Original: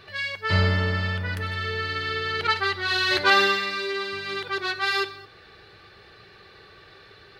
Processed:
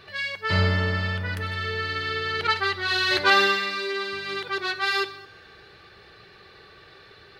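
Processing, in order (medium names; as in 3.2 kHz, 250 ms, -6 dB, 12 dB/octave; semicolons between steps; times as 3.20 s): hum notches 50/100 Hz; on a send: reverberation RT60 2.9 s, pre-delay 4 ms, DRR 23 dB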